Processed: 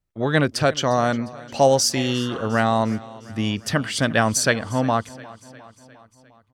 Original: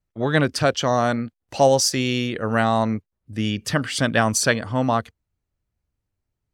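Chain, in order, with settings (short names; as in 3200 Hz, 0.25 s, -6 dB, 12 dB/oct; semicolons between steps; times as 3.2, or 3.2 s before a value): spectral repair 2–2.42, 900–2700 Hz both; feedback echo 0.354 s, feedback 59%, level -20 dB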